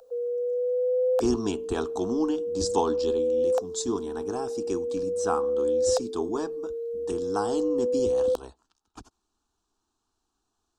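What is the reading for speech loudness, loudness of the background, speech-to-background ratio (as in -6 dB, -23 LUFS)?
-31.5 LUFS, -28.5 LUFS, -3.0 dB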